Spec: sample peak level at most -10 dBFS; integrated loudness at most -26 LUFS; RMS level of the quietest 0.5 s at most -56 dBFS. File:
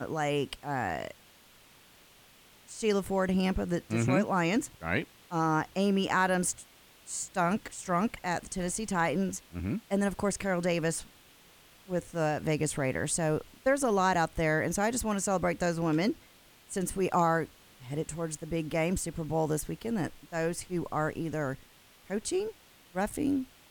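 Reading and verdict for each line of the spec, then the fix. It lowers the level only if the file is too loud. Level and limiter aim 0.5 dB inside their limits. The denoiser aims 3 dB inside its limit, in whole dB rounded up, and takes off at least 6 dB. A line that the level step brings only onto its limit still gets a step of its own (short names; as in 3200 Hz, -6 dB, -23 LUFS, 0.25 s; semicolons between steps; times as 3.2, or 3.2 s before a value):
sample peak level -14.0 dBFS: OK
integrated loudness -31.0 LUFS: OK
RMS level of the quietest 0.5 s -58 dBFS: OK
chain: none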